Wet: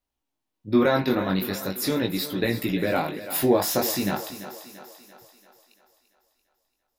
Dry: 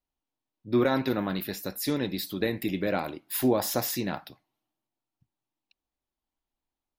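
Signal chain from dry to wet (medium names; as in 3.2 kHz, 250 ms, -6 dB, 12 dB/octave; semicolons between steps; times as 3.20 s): chorus 0.41 Hz, delay 16.5 ms, depth 5.1 ms; thinning echo 340 ms, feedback 54%, high-pass 210 Hz, level -12 dB; trim +7.5 dB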